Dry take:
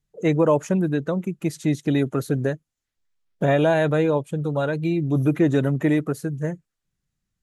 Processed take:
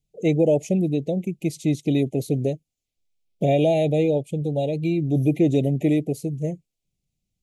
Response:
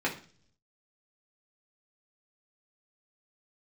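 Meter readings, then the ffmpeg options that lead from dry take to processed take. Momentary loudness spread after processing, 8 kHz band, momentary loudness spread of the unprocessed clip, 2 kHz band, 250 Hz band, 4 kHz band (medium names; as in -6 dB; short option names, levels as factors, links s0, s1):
9 LU, no reading, 9 LU, -8.5 dB, 0.0 dB, 0.0 dB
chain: -af "asuperstop=centerf=1300:order=12:qfactor=0.95"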